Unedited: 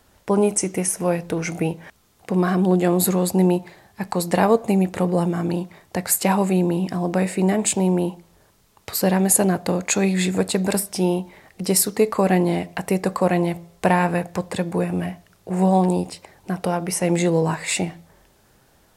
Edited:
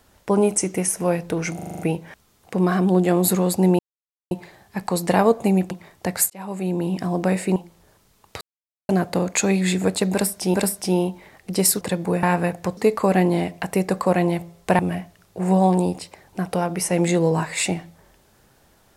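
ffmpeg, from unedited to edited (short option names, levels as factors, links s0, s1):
-filter_complex "[0:a]asplit=18[s0][s1][s2][s3][s4][s5][s6][s7][s8][s9][s10][s11][s12][s13][s14][s15][s16][s17];[s0]atrim=end=1.592[s18];[s1]atrim=start=1.548:end=1.592[s19];[s2]atrim=start=1.548:end=1.592[s20];[s3]atrim=start=1.548:end=1.592[s21];[s4]atrim=start=1.548:end=1.592[s22];[s5]atrim=start=1.548:end=1.592[s23];[s6]atrim=start=1.548:end=3.55,asetpts=PTS-STARTPTS,afade=t=out:st=1.998:d=0.004:c=hsin,apad=pad_dur=0.52[s24];[s7]atrim=start=3.55:end=4.952,asetpts=PTS-STARTPTS,afade=t=in:d=0.004:c=hsin[s25];[s8]atrim=start=5.608:end=6.2,asetpts=PTS-STARTPTS,afade=t=out:st=0.588:d=0.004:c=hsin[s26];[s9]atrim=start=6.2:end=7.462,asetpts=PTS-STARTPTS,afade=t=in:d=0.71[s27];[s10]atrim=start=8.088:end=8.94,asetpts=PTS-STARTPTS,afade=t=out:st=0.848:d=0.004:c=hsin[s28];[s11]atrim=start=8.94:end=9.42,asetpts=PTS-STARTPTS,volume=0[s29];[s12]atrim=start=9.42:end=11.072,asetpts=PTS-STARTPTS,afade=t=in:d=0.004:c=hsin[s30];[s13]atrim=start=10.648:end=11.922[s31];[s14]atrim=start=14.478:end=14.902[s32];[s15]atrim=start=13.938:end=14.482[s33];[s16]atrim=start=11.918:end=13.942[s34];[s17]atrim=start=14.898[s35];[s18][s19]acrossfade=d=0.004:c1=hsin:c2=hsin[s36];[s36][s20]acrossfade=d=0.004:c1=hsin:c2=hsin[s37];[s37][s21]acrossfade=d=0.004:c1=hsin:c2=hsin[s38];[s38][s22]acrossfade=d=0.004:c1=hsin:c2=hsin[s39];[s39][s23]acrossfade=d=0.004:c1=hsin:c2=hsin[s40];[s24][s25]concat=n=2:v=0:a=1[s41];[s40][s41]acrossfade=d=0.004:c1=hsin:c2=hsin[s42];[s26][s27]concat=n=2:v=0:a=1[s43];[s42][s43]acrossfade=d=0.004:c1=hsin:c2=hsin[s44];[s28][s29][s30]concat=n=3:v=0:a=1[s45];[s44][s45]acrossfade=d=0.004:c1=hsin:c2=hsin[s46];[s46][s31]acrossfade=d=0.004:c1=hsin:c2=hsin[s47];[s47][s32]acrossfade=d=0.004:c1=hsin:c2=hsin[s48];[s48][s33]acrossfade=d=0.004:c1=hsin:c2=hsin[s49];[s49][s34]acrossfade=d=0.004:c1=hsin:c2=hsin[s50];[s50][s35]acrossfade=d=0.004:c1=hsin:c2=hsin"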